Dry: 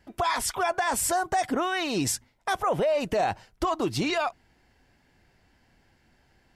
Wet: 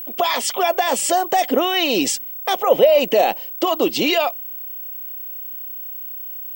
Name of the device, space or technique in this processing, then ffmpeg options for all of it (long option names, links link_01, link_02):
old television with a line whistle: -af "highpass=frequency=220:width=0.5412,highpass=frequency=220:width=1.3066,equalizer=frequency=520:width_type=q:width=4:gain=9,equalizer=frequency=1000:width_type=q:width=4:gain=-4,equalizer=frequency=1500:width_type=q:width=4:gain=-9,equalizer=frequency=3000:width_type=q:width=4:gain=10,lowpass=frequency=8600:width=0.5412,lowpass=frequency=8600:width=1.3066,aeval=exprs='val(0)+0.0158*sin(2*PI*15734*n/s)':channel_layout=same,volume=7.5dB"